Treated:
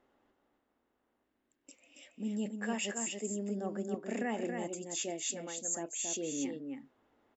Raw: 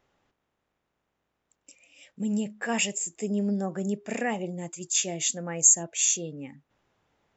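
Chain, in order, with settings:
reversed playback
downward compressor 6 to 1, threshold −34 dBFS, peak gain reduction 19.5 dB
reversed playback
parametric band 6,000 Hz −3.5 dB 0.52 octaves
gain on a spectral selection 0:01.24–0:01.64, 390–1,500 Hz −8 dB
low shelf with overshoot 200 Hz −6 dB, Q 3
notch filter 2,400 Hz, Q 17
on a send: single-tap delay 277 ms −5 dB
on the sum: one half of a high-frequency compander decoder only

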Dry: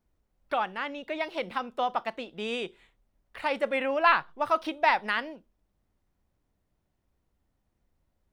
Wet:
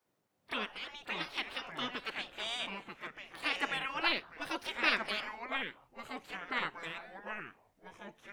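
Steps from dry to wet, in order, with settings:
gate on every frequency bin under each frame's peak −15 dB weak
delay with pitch and tempo change per echo 426 ms, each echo −4 semitones, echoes 2, each echo −6 dB
echo ahead of the sound 31 ms −18 dB
level +3 dB

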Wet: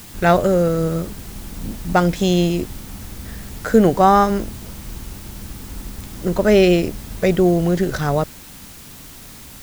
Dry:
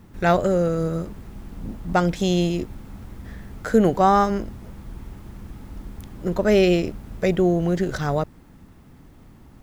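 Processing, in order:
background noise white −45 dBFS
level +4 dB

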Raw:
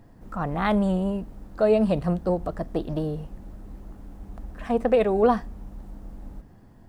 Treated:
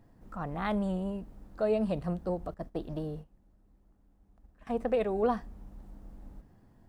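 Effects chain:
0:02.54–0:04.67: noise gate −32 dBFS, range −15 dB
level −8.5 dB

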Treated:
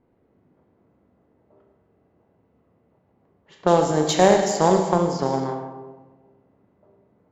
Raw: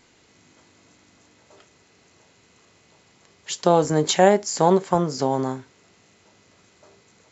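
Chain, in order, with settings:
four-comb reverb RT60 1.6 s, combs from 29 ms, DRR 2 dB
low-pass that shuts in the quiet parts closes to 650 Hz, open at −13.5 dBFS
harmonic generator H 2 −19 dB, 7 −31 dB, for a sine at −2 dBFS
level −1.5 dB

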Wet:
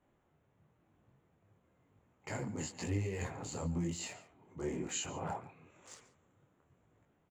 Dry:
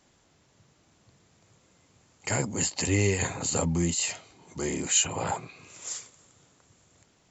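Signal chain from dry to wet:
adaptive Wiener filter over 9 samples
high-shelf EQ 2,400 Hz −8.5 dB
brickwall limiter −21.5 dBFS, peak gain reduction 7.5 dB
single-tap delay 140 ms −17.5 dB
micro pitch shift up and down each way 35 cents
level −3.5 dB

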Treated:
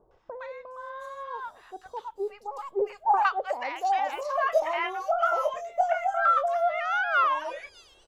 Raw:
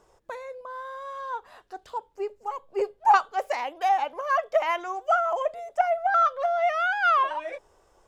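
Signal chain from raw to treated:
0:04.04–0:06.33: double-tracking delay 22 ms −6.5 dB
three-band delay without the direct sound lows, mids, highs 110/710 ms, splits 950/4,500 Hz

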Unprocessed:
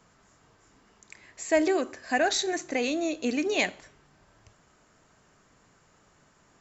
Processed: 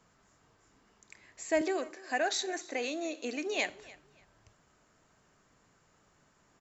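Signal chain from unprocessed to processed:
0:01.61–0:03.70: high-pass filter 330 Hz 12 dB per octave
repeating echo 293 ms, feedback 23%, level −21 dB
level −5.5 dB

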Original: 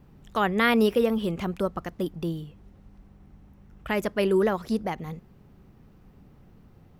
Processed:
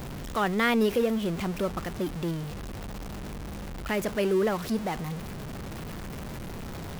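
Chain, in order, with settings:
converter with a step at zero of −28 dBFS
level −4 dB

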